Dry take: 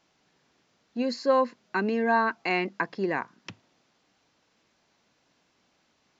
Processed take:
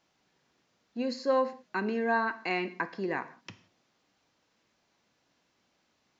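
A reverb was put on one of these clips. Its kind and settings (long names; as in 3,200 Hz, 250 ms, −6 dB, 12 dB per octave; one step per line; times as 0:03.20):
reverb whose tail is shaped and stops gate 200 ms falling, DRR 10 dB
level −4.5 dB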